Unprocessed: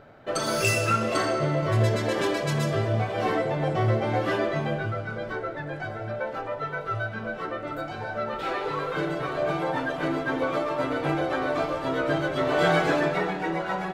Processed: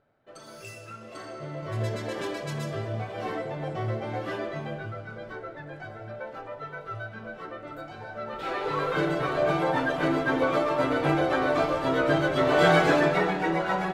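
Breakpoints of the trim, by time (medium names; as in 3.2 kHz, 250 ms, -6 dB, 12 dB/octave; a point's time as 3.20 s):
0.95 s -19.5 dB
1.86 s -7 dB
8.15 s -7 dB
8.83 s +2 dB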